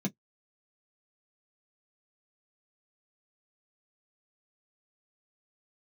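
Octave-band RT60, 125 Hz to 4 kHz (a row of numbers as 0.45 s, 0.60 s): 0.15 s, 0.10 s, 0.10 s, 0.10 s, 0.05 s, 0.10 s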